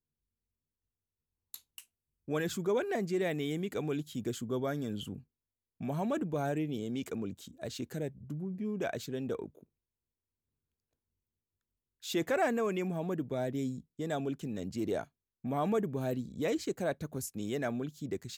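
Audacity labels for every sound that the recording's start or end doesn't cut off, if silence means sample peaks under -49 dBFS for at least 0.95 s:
1.540000	9.630000	sound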